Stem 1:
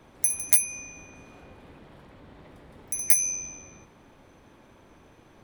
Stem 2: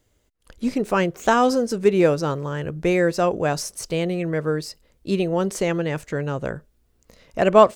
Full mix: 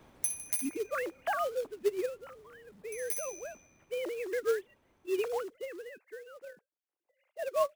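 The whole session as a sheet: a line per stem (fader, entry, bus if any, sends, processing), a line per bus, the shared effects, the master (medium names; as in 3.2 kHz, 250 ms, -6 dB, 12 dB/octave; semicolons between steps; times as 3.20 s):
-3.0 dB, 0.00 s, no send, echo send -18 dB, auto duck -14 dB, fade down 0.70 s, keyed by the second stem
1.34 s -8.5 dB -> 1.87 s -18 dB -> 3.60 s -18 dB -> 4.09 s -5.5 dB -> 5.32 s -5.5 dB -> 5.54 s -15.5 dB, 0.00 s, no send, no echo send, formants replaced by sine waves; bass shelf 200 Hz -10 dB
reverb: none
echo: feedback delay 64 ms, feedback 33%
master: short-mantissa float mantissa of 2-bit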